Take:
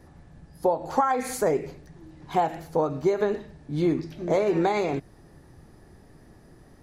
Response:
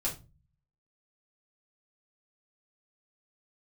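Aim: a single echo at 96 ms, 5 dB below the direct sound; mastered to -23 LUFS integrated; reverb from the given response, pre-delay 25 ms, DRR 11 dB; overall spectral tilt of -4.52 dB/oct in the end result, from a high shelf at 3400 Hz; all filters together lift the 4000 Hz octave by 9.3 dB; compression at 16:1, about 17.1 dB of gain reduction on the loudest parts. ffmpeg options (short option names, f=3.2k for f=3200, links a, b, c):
-filter_complex "[0:a]highshelf=f=3.4k:g=6.5,equalizer=f=4k:t=o:g=6.5,acompressor=threshold=-35dB:ratio=16,aecho=1:1:96:0.562,asplit=2[a][b];[1:a]atrim=start_sample=2205,adelay=25[c];[b][c]afir=irnorm=-1:irlink=0,volume=-15dB[d];[a][d]amix=inputs=2:normalize=0,volume=15.5dB"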